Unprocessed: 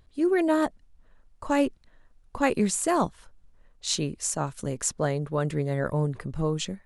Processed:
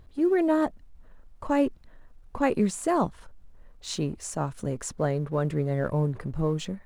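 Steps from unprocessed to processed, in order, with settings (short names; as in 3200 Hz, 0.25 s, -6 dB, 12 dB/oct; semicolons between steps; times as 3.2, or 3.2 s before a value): G.711 law mismatch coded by mu; high shelf 2100 Hz -9.5 dB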